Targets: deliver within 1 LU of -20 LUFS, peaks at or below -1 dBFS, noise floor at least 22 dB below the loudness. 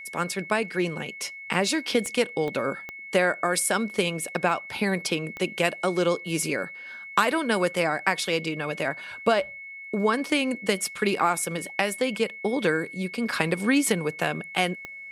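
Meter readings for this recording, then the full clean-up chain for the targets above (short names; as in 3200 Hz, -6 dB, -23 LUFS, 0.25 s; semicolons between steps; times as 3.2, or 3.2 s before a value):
clicks 5; steady tone 2200 Hz; tone level -38 dBFS; loudness -26.0 LUFS; peak -5.0 dBFS; loudness target -20.0 LUFS
-> de-click; notch 2200 Hz, Q 30; gain +6 dB; limiter -1 dBFS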